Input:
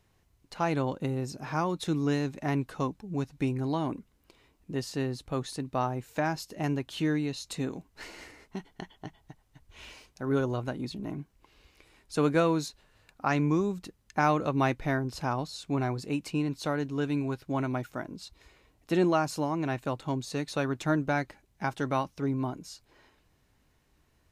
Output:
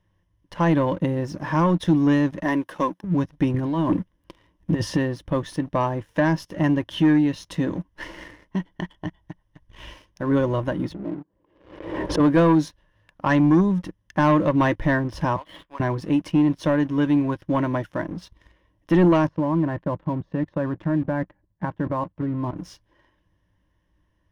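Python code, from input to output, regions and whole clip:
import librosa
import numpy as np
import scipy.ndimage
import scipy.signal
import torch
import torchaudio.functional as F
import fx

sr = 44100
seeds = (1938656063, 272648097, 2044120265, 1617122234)

y = fx.chain(x, sr, fx.highpass(hz=270.0, slope=12),
    fx.high_shelf(hz=8800.0, db=10.0), at=(2.43, 3.04))
y = fx.chain(y, sr, fx.over_compress(threshold_db=-33.0, ratio=-0.5),
    fx.leveller(passes=1), at=(3.54, 4.98))
y = fx.chain(y, sr, fx.bandpass_q(hz=440.0, q=1.5),
    fx.pre_swell(db_per_s=52.0), at=(10.92, 12.2))
y = fx.chain(y, sr, fx.highpass(hz=1300.0, slope=12),
    fx.high_shelf(hz=2500.0, db=-6.0),
    fx.resample_linear(factor=6), at=(15.36, 15.8))
y = fx.chain(y, sr, fx.peak_eq(hz=130.0, db=3.5, octaves=1.4),
    fx.level_steps(step_db=11),
    fx.lowpass(hz=1500.0, slope=12), at=(19.27, 22.58))
y = fx.ripple_eq(y, sr, per_octave=1.2, db=11)
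y = fx.leveller(y, sr, passes=2)
y = fx.bass_treble(y, sr, bass_db=4, treble_db=-12)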